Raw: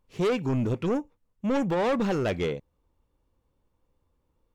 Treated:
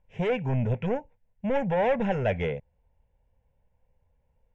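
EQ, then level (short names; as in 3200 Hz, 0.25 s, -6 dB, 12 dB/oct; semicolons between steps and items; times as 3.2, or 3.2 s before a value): air absorption 150 m; high shelf 7300 Hz -6.5 dB; fixed phaser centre 1200 Hz, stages 6; +4.5 dB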